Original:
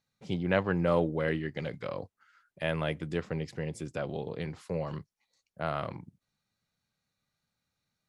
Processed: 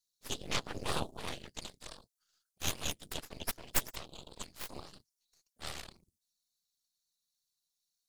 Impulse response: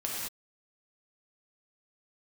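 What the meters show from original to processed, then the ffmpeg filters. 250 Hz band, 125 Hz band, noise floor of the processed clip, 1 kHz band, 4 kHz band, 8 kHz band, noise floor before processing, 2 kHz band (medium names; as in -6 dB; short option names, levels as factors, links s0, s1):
-14.5 dB, -13.5 dB, under -85 dBFS, -6.5 dB, +5.5 dB, +16.5 dB, under -85 dBFS, -7.0 dB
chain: -af "afftfilt=real='hypot(re,im)*cos(2*PI*random(0))':imag='hypot(re,im)*sin(2*PI*random(1))':win_size=512:overlap=0.75,aexciter=amount=13.5:drive=8:freq=3300,aeval=exprs='0.251*(cos(1*acos(clip(val(0)/0.251,-1,1)))-cos(1*PI/2))+0.0708*(cos(3*acos(clip(val(0)/0.251,-1,1)))-cos(3*PI/2))+0.0708*(cos(6*acos(clip(val(0)/0.251,-1,1)))-cos(6*PI/2))':c=same,volume=0.794"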